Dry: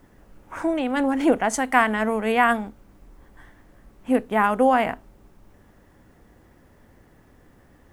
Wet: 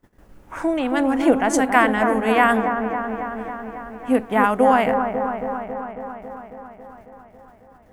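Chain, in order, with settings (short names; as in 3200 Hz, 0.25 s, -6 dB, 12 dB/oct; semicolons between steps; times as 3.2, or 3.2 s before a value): gate -52 dBFS, range -18 dB; dark delay 0.274 s, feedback 71%, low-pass 1400 Hz, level -6 dB; gain +2 dB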